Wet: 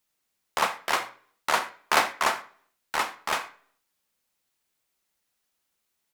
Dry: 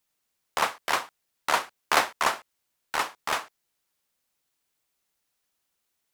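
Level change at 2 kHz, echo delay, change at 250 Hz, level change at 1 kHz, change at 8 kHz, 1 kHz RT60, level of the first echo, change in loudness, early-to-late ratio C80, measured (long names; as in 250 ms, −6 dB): +0.5 dB, 84 ms, +0.5 dB, +0.5 dB, 0.0 dB, 0.50 s, −20.5 dB, +0.5 dB, 17.5 dB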